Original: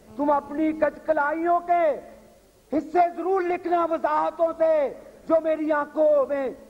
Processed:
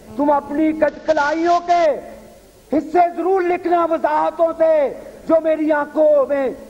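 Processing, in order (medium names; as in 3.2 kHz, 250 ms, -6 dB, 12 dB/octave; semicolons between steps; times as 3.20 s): 0.88–1.86 s: CVSD coder 32 kbps; band-stop 1.2 kHz, Q 9.8; in parallel at +1 dB: compression, threshold -28 dBFS, peak gain reduction 12.5 dB; on the sum: trim +3.5 dB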